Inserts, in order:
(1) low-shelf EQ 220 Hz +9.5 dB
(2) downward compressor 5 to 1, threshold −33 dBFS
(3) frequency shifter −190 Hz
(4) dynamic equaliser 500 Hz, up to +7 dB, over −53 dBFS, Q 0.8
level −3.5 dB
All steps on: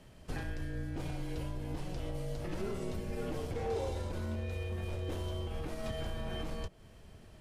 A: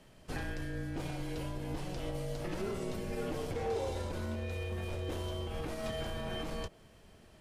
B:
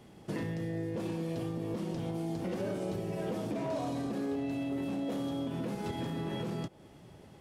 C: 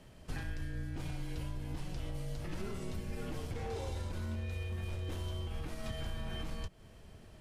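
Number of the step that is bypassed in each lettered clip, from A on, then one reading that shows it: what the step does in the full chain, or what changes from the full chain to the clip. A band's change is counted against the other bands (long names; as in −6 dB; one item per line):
1, 125 Hz band −3.5 dB
3, 250 Hz band +8.5 dB
4, 500 Hz band −5.5 dB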